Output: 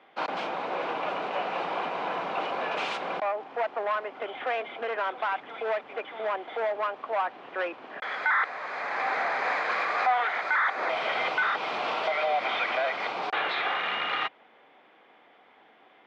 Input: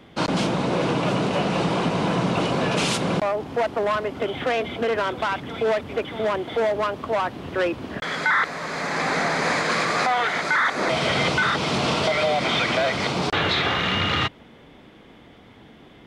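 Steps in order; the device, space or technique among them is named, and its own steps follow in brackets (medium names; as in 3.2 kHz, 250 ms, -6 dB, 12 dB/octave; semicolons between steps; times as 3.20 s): tin-can telephone (band-pass 640–2400 Hz; small resonant body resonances 770/2400 Hz, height 6 dB); trim -3.5 dB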